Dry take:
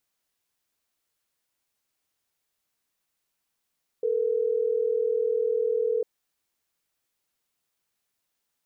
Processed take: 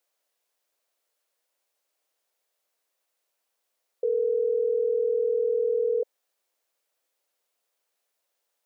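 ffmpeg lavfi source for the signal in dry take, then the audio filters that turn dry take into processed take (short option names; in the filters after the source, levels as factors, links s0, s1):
-f lavfi -i "aevalsrc='0.0562*(sin(2*PI*440*t)+sin(2*PI*480*t))*clip(min(mod(t,6),2-mod(t,6))/0.005,0,1)':d=3.12:s=44100"
-af "highpass=400,equalizer=f=550:t=o:w=0.89:g=9.5,alimiter=limit=0.112:level=0:latency=1:release=62"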